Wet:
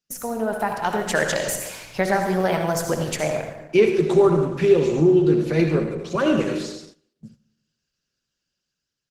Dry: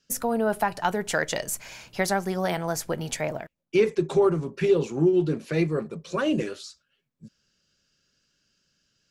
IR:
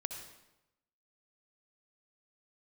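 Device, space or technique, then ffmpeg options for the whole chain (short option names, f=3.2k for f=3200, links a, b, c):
speakerphone in a meeting room: -filter_complex "[0:a]asettb=1/sr,asplit=3[a][b][c];[a]atrim=end=2.014[d];[b]atrim=start=2.01:end=2.64,asetpts=PTS-STARTPTS,afade=t=in:d=0.004:c=qsin,afade=t=out:st=0.626:d=0.004:c=qsin,acrossover=split=3300[e][f];[f]acompressor=threshold=-39dB:ratio=4:attack=1:release=60[g];[e][g]amix=inputs=2:normalize=0[h];[c]atrim=start=2.636[i];[d][h]acrossfade=d=0.004:c1=hsin:c2=qsin[j];[j][i]acrossfade=d=0.004:c1=qsin:c2=hsin,asplit=3[k][l][m];[k]afade=t=out:st=4.85:d=0.02[n];[l]highshelf=f=9.6k:g=-3,afade=t=in:st=4.85:d=0.02,afade=t=out:st=6.2:d=0.02[o];[m]afade=t=in:st=6.2:d=0.02[p];[n][o][p]amix=inputs=3:normalize=0[q];[1:a]atrim=start_sample=2205[r];[q][r]afir=irnorm=-1:irlink=0,asplit=2[s][t];[t]adelay=230,highpass=300,lowpass=3.4k,asoftclip=type=hard:threshold=-19.5dB,volume=-22dB[u];[s][u]amix=inputs=2:normalize=0,dynaudnorm=f=190:g=9:m=6.5dB,agate=range=-14dB:threshold=-44dB:ratio=16:detection=peak" -ar 48000 -c:a libopus -b:a 16k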